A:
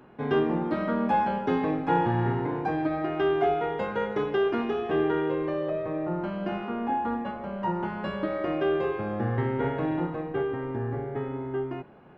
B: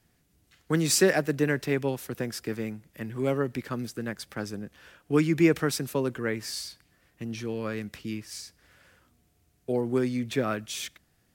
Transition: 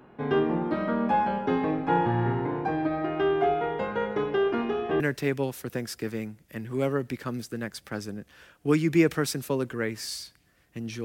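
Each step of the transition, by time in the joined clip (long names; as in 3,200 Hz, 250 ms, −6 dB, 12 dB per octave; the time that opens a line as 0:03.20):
A
0:05.00: continue with B from 0:01.45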